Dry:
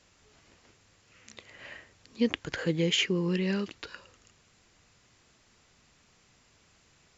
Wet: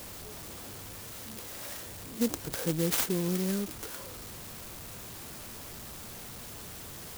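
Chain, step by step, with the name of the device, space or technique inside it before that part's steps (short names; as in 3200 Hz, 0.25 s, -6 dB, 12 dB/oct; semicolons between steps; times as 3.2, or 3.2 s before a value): early CD player with a faulty converter (zero-crossing step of -35 dBFS; clock jitter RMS 0.15 ms); gain -3 dB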